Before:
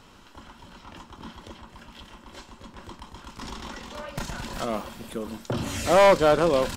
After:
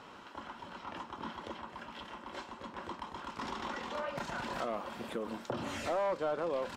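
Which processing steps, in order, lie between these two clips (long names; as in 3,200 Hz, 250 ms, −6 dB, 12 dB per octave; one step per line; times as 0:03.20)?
high-pass filter 130 Hz 6 dB per octave
downward compressor 4 to 1, threshold −35 dBFS, peak gain reduction 17.5 dB
mid-hump overdrive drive 12 dB, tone 1,100 Hz, clips at −21.5 dBFS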